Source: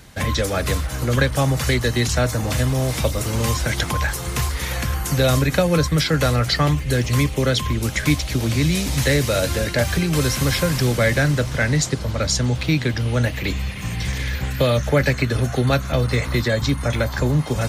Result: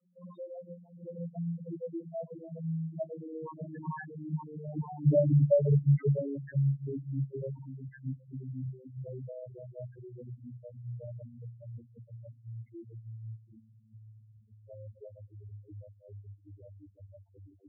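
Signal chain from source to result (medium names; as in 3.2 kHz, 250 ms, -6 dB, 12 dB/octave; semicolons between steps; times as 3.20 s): vocoder on a note that slides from F3, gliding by -10 st; Doppler pass-by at 4.95 s, 6 m/s, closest 4.1 m; tone controls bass -13 dB, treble -10 dB; loudest bins only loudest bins 2; trim +8.5 dB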